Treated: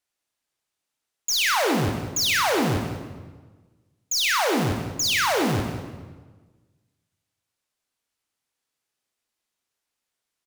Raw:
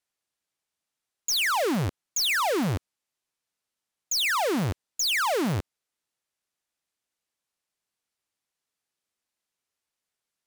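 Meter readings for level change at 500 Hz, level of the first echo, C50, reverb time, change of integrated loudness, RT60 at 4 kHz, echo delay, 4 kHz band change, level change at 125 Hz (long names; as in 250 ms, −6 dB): +3.5 dB, −12.0 dB, 3.5 dB, 1.4 s, +3.0 dB, 1.0 s, 189 ms, +3.5 dB, +3.0 dB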